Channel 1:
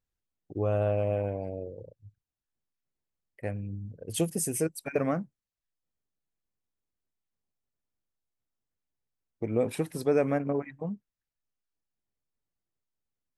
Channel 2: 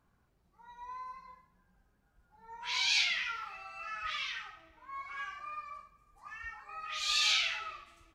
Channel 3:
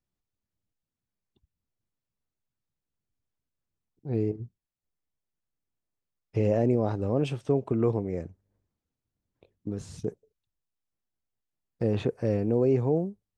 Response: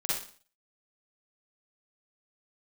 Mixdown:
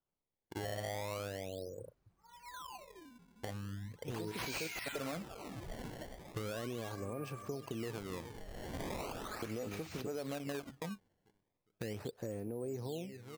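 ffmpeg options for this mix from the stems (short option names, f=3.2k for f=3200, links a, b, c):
-filter_complex "[0:a]agate=range=-32dB:threshold=-46dB:ratio=16:detection=peak,volume=0dB[a];[1:a]adelay=1650,volume=-4.5dB,asplit=2[b][c];[c]volume=-9.5dB[d];[2:a]bass=f=250:g=0,treble=f=4k:g=4,volume=-4dB,asplit=3[e][f][g];[f]volume=-22dB[h];[g]apad=whole_len=589768[i];[a][i]sidechaincompress=threshold=-31dB:ratio=8:attack=36:release=1040[j];[j][e]amix=inputs=2:normalize=0,lowshelf=f=430:g=-5.5,alimiter=level_in=1dB:limit=-24dB:level=0:latency=1:release=73,volume=-1dB,volume=0dB[k];[d][h]amix=inputs=2:normalize=0,aecho=0:1:405|810|1215|1620|2025|2430:1|0.41|0.168|0.0689|0.0283|0.0116[l];[b][k][l]amix=inputs=3:normalize=0,equalizer=f=3.4k:t=o:w=0.4:g=-11.5,acrusher=samples=20:mix=1:aa=0.000001:lfo=1:lforange=32:lforate=0.38,acompressor=threshold=-39dB:ratio=3"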